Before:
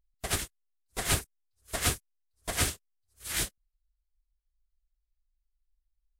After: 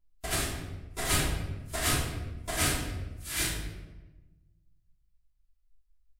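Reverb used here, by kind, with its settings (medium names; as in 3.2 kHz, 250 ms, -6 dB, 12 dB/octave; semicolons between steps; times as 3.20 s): simulated room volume 620 m³, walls mixed, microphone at 3 m; trim -5 dB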